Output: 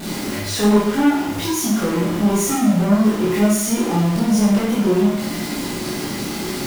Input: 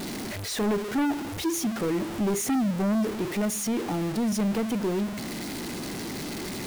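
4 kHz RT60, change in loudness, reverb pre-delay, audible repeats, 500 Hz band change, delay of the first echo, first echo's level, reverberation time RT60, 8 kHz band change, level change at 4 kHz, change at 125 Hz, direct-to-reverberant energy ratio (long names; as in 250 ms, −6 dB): 0.70 s, +9.5 dB, 14 ms, no echo audible, +9.0 dB, no echo audible, no echo audible, 0.70 s, +8.5 dB, +8.5 dB, +11.0 dB, −8.0 dB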